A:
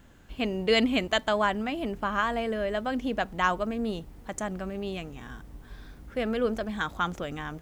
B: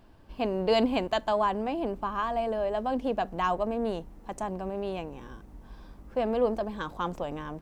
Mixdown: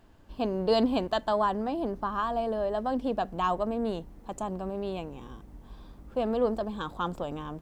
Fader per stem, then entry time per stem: -11.5, -2.0 dB; 0.00, 0.00 s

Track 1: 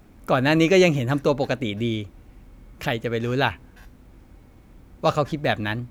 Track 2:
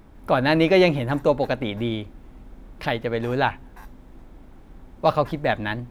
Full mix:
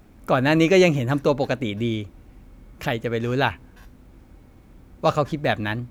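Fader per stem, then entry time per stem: -0.5, -16.5 dB; 0.00, 0.00 s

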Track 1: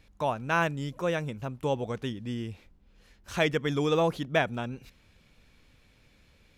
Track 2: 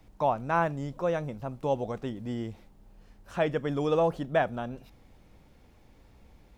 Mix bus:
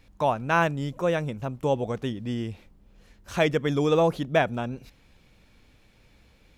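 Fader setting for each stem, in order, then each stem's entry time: +1.0, -6.0 dB; 0.00, 0.00 s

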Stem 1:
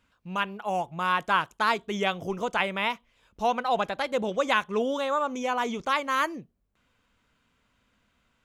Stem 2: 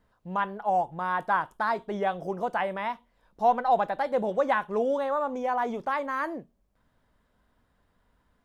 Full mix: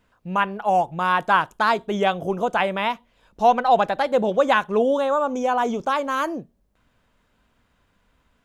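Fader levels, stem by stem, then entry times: 0.0, +2.5 dB; 0.00, 0.00 s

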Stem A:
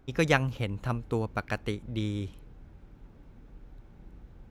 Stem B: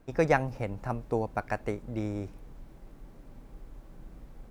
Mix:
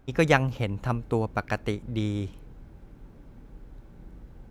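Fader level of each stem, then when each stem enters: +1.0, -6.5 dB; 0.00, 0.00 s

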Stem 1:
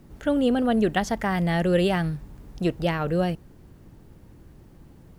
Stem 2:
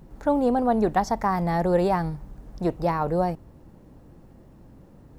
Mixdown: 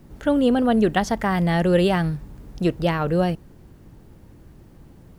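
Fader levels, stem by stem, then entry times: +2.0, -11.0 dB; 0.00, 0.00 s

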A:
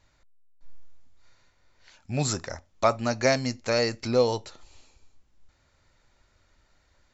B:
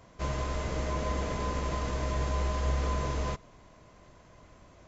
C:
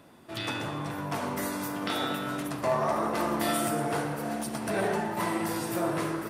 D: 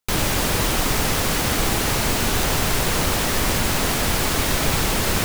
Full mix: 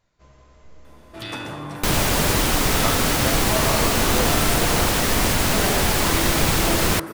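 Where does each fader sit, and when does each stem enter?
-7.0, -19.5, +1.5, +1.0 dB; 0.00, 0.00, 0.85, 1.75 s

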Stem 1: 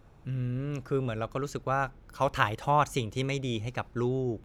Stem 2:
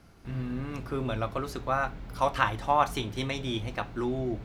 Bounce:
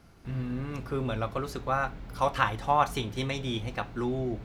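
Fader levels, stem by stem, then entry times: -12.5, -0.5 dB; 0.00, 0.00 s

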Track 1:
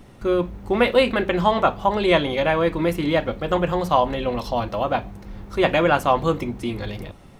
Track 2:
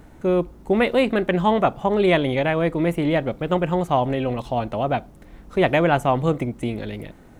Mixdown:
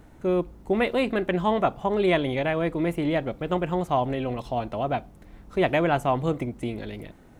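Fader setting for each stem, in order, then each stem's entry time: -19.5, -4.5 dB; 0.00, 0.00 s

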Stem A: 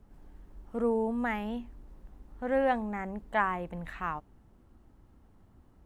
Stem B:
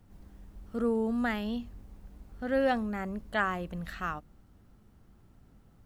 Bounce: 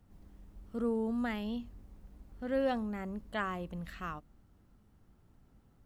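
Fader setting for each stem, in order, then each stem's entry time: -13.5, -5.5 dB; 0.00, 0.00 s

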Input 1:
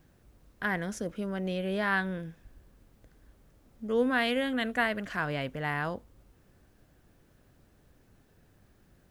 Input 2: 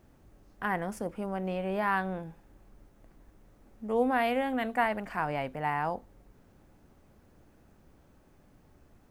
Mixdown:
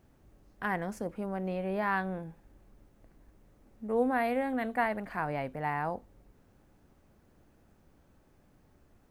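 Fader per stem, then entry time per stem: -13.0, -3.5 dB; 0.00, 0.00 s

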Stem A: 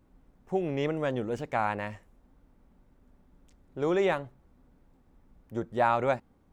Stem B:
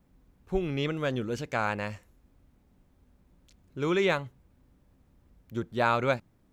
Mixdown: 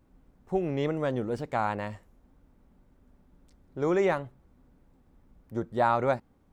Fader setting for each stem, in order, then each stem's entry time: -0.5, -12.5 dB; 0.00, 0.00 s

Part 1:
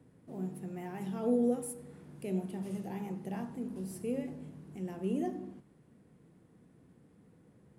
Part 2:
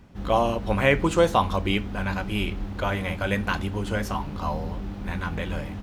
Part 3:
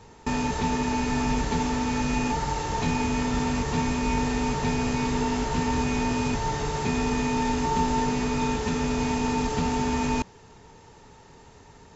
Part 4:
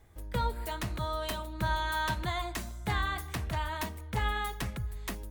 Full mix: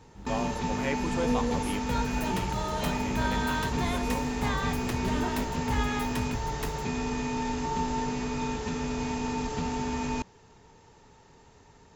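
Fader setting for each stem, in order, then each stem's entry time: -2.0, -12.5, -5.5, -0.5 dB; 0.00, 0.00, 0.00, 1.55 s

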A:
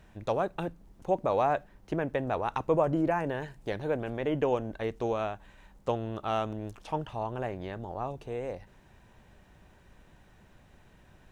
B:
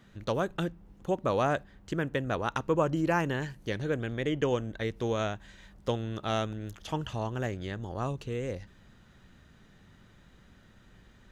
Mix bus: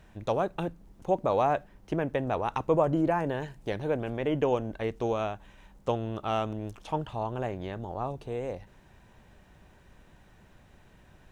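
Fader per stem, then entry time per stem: +1.0, -17.5 dB; 0.00, 0.00 s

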